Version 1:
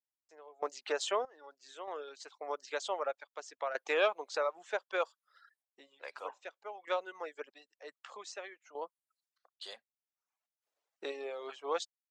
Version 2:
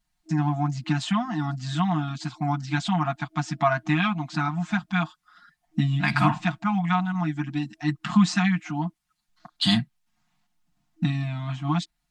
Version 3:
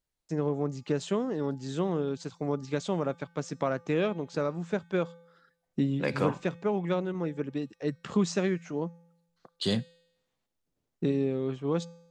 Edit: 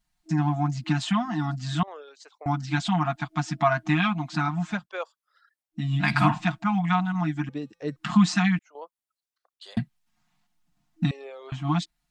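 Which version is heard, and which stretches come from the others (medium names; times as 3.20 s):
2
1.83–2.46 s: from 1
4.77–5.83 s: from 1, crossfade 0.24 s
7.49–7.96 s: from 3
8.59–9.77 s: from 1
11.11–11.52 s: from 1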